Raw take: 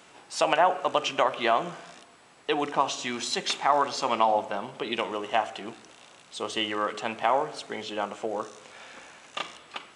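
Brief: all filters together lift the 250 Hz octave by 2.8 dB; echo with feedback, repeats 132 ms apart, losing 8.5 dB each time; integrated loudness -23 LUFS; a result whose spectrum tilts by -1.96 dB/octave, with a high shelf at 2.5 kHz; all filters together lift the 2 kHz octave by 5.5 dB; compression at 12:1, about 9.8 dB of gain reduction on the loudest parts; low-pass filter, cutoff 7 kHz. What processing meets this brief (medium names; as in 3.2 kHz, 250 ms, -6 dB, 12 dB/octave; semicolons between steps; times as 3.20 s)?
low-pass 7 kHz; peaking EQ 250 Hz +3.5 dB; peaking EQ 2 kHz +5 dB; treble shelf 2.5 kHz +4.5 dB; compression 12:1, threshold -25 dBFS; feedback delay 132 ms, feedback 38%, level -8.5 dB; trim +8 dB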